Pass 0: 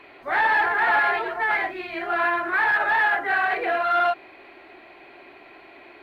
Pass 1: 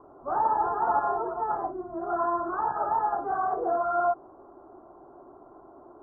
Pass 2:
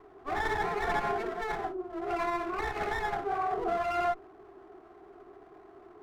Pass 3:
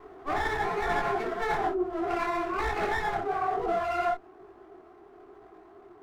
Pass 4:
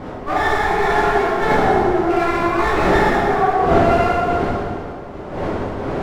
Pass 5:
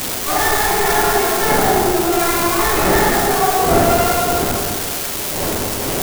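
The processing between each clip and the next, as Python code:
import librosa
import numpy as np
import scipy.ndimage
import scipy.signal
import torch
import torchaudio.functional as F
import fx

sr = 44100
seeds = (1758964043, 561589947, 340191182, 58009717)

y1 = scipy.signal.sosfilt(scipy.signal.butter(12, 1300.0, 'lowpass', fs=sr, output='sos'), x)
y1 = fx.low_shelf(y1, sr, hz=220.0, db=5.5)
y1 = y1 * librosa.db_to_amplitude(-2.0)
y2 = fx.lower_of_two(y1, sr, delay_ms=2.7)
y2 = fx.small_body(y2, sr, hz=(410.0, 1300.0), ring_ms=45, db=7)
y2 = y2 * librosa.db_to_amplitude(-3.5)
y3 = fx.rider(y2, sr, range_db=10, speed_s=0.5)
y3 = fx.detune_double(y3, sr, cents=38)
y3 = y3 * librosa.db_to_amplitude(6.5)
y4 = fx.dmg_wind(y3, sr, seeds[0], corner_hz=590.0, level_db=-35.0)
y4 = y4 + 10.0 ** (-9.5 / 20.0) * np.pad(y4, (int(186 * sr / 1000.0), 0))[:len(y4)]
y4 = fx.rev_plate(y4, sr, seeds[1], rt60_s=2.0, hf_ratio=0.8, predelay_ms=0, drr_db=-3.0)
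y4 = y4 * librosa.db_to_amplitude(6.5)
y5 = y4 + 0.5 * 10.0 ** (-8.0 / 20.0) * np.diff(np.sign(y4), prepend=np.sign(y4[:1]))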